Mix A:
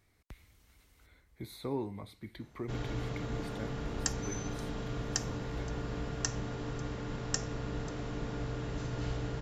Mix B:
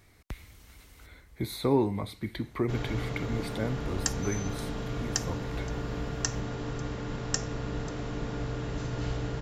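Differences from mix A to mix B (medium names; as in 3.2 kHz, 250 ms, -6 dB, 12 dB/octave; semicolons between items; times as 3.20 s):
speech +11.0 dB; background +3.5 dB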